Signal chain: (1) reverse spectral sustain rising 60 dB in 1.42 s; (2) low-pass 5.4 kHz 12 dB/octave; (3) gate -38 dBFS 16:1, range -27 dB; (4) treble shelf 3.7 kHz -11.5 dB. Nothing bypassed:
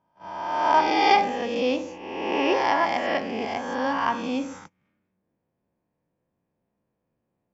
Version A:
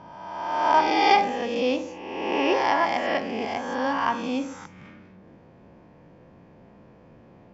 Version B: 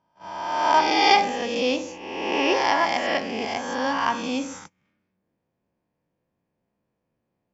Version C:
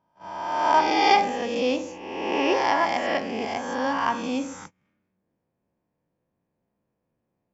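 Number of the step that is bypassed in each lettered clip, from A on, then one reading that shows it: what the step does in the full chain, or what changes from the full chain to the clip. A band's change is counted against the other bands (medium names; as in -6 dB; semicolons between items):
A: 3, momentary loudness spread change +1 LU; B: 4, 4 kHz band +5.5 dB; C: 2, momentary loudness spread change +2 LU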